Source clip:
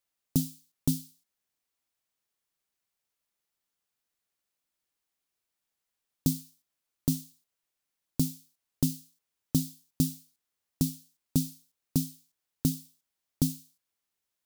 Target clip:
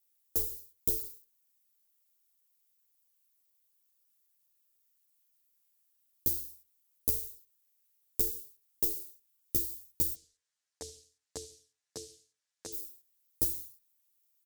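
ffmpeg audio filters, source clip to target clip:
ffmpeg -i in.wav -filter_complex "[0:a]aemphasis=mode=production:type=75fm,bandreject=frequency=50:width_type=h:width=6,bandreject=frequency=100:width_type=h:width=6,bandreject=frequency=150:width_type=h:width=6,bandreject=frequency=200:width_type=h:width=6,bandreject=frequency=250:width_type=h:width=6,bandreject=frequency=300:width_type=h:width=6,bandreject=frequency=350:width_type=h:width=6,bandreject=frequency=400:width_type=h:width=6,bandreject=frequency=450:width_type=h:width=6,bandreject=frequency=500:width_type=h:width=6,acompressor=threshold=-20dB:ratio=6,aeval=exprs='val(0)*sin(2*PI*180*n/s)':channel_layout=same,asplit=3[link_01][link_02][link_03];[link_01]afade=type=out:start_time=10.13:duration=0.02[link_04];[link_02]highpass=130,equalizer=frequency=220:width_type=q:width=4:gain=-8,equalizer=frequency=350:width_type=q:width=4:gain=-9,equalizer=frequency=1700:width_type=q:width=4:gain=7,lowpass=frequency=7300:width=0.5412,lowpass=frequency=7300:width=1.3066,afade=type=in:start_time=10.13:duration=0.02,afade=type=out:start_time=12.72:duration=0.02[link_05];[link_03]afade=type=in:start_time=12.72:duration=0.02[link_06];[link_04][link_05][link_06]amix=inputs=3:normalize=0,asplit=2[link_07][link_08];[link_08]adelay=75,lowpass=frequency=910:poles=1,volume=-23dB,asplit=2[link_09][link_10];[link_10]adelay=75,lowpass=frequency=910:poles=1,volume=0.42,asplit=2[link_11][link_12];[link_12]adelay=75,lowpass=frequency=910:poles=1,volume=0.42[link_13];[link_07][link_09][link_11][link_13]amix=inputs=4:normalize=0,asplit=2[link_14][link_15];[link_15]adelay=10.7,afreqshift=-0.28[link_16];[link_14][link_16]amix=inputs=2:normalize=1" out.wav

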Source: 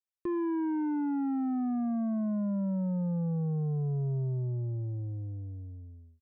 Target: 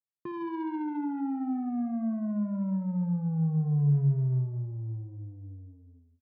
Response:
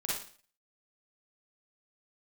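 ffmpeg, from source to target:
-filter_complex "[0:a]highpass=130,equalizer=frequency=140:width_type=q:width=4:gain=9,equalizer=frequency=360:width_type=q:width=4:gain=-6,equalizer=frequency=540:width_type=q:width=4:gain=-10,equalizer=frequency=980:width_type=q:width=4:gain=5,lowpass=frequency=2100:width=0.5412,lowpass=frequency=2100:width=1.3066,aecho=1:1:62|124|186|248|310|372:0.2|0.11|0.0604|0.0332|0.0183|0.01,adynamicsmooth=sensitivity=3:basefreq=760,asplit=2[link_01][link_02];[1:a]atrim=start_sample=2205,lowpass=2000,adelay=115[link_03];[link_02][link_03]afir=irnorm=-1:irlink=0,volume=-14.5dB[link_04];[link_01][link_04]amix=inputs=2:normalize=0"

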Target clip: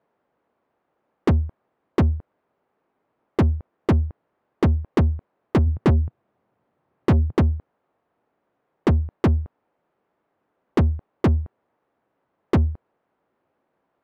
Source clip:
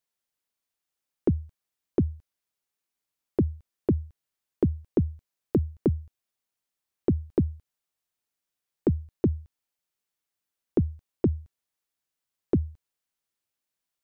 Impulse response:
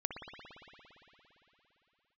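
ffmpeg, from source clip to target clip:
-filter_complex "[0:a]adynamicsmooth=sensitivity=5.5:basefreq=700,asplit=3[link_01][link_02][link_03];[link_01]afade=type=out:start_time=5.66:duration=0.02[link_04];[link_02]equalizer=frequency=120:width_type=o:width=1.4:gain=10,afade=type=in:start_time=5.66:duration=0.02,afade=type=out:start_time=7.36:duration=0.02[link_05];[link_03]afade=type=in:start_time=7.36:duration=0.02[link_06];[link_04][link_05][link_06]amix=inputs=3:normalize=0,asplit=2[link_07][link_08];[link_08]highpass=frequency=720:poles=1,volume=42dB,asoftclip=type=tanh:threshold=-9dB[link_09];[link_07][link_09]amix=inputs=2:normalize=0,lowpass=frequency=1600:poles=1,volume=-6dB"

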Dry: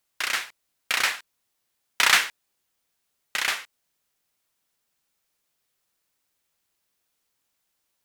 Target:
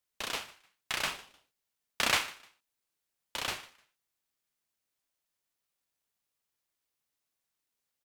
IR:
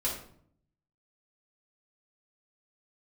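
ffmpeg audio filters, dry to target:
-af "aecho=1:1:152|304:0.1|0.025,aeval=exprs='val(0)*sin(2*PI*840*n/s+840*0.35/0.64*sin(2*PI*0.64*n/s))':channel_layout=same,volume=-6.5dB"

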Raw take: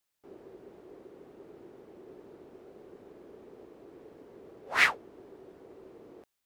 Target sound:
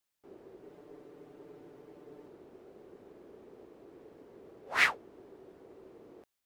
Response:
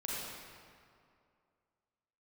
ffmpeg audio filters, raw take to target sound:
-filter_complex "[0:a]asettb=1/sr,asplit=3[link_01][link_02][link_03];[link_01]atrim=end=0.634[link_04];[link_02]atrim=start=0.63:end=2.28,asetpts=PTS-STARTPTS,afade=type=in:duration=0.004:curve=qsin,afade=type=out:start_time=1.646:duration=0.004:curve=qsin,aecho=1:1:6.8:0.68,atrim=end_sample=72765[link_05];[link_03]atrim=start=2.276[link_06];[link_04][link_05]acrossfade=duration=0.004:curve1=hsin:curve2=qsin[link_07];[link_07][link_06]acrossfade=duration=0.004:curve1=qsin:curve2=hsin,volume=-2.5dB"

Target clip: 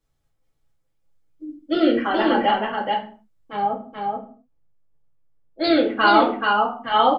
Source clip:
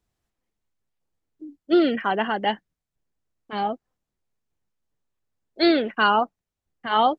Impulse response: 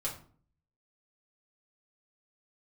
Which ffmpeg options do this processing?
-filter_complex "[0:a]asettb=1/sr,asplit=3[link_01][link_02][link_03];[link_01]atrim=end=3.554[link_04];[link_02]atrim=start=3.55:end=5.64,asetpts=PTS-STARTPTS,afade=type=in:duration=0.004:curve=qsin,afade=type=out:start_time=2.086:duration=0.004:curve=qsin,lowpass=frequency=1100:poles=1[link_05];[link_03]atrim=start=5.636[link_06];[link_04][link_05]acrossfade=duration=0.004:curve1=hsin:curve2=qsin[link_07];[link_07][link_06]acrossfade=duration=0.004:curve1=qsin:curve2=hsin,aecho=1:1:430:0.668[link_08];[1:a]atrim=start_sample=2205,afade=type=out:start_time=0.34:duration=0.01,atrim=end_sample=15435[link_09];[link_08][link_09]afir=irnorm=-1:irlink=0"

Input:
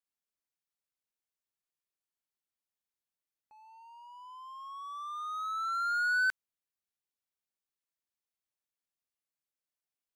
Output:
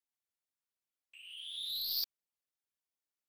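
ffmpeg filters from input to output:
ffmpeg -i in.wav -af "afftfilt=real='hypot(re,im)*cos(2*PI*random(0))':imag='hypot(re,im)*sin(2*PI*random(1))':win_size=512:overlap=0.75,aeval=exprs='0.0562*(cos(1*acos(clip(val(0)/0.0562,-1,1)))-cos(1*PI/2))+0.0126*(cos(3*acos(clip(val(0)/0.0562,-1,1)))-cos(3*PI/2))+0.0224*(cos(7*acos(clip(val(0)/0.0562,-1,1)))-cos(7*PI/2))+0.000794*(cos(8*acos(clip(val(0)/0.0562,-1,1)))-cos(8*PI/2))':channel_layout=same,asetrate=136269,aresample=44100" out.wav

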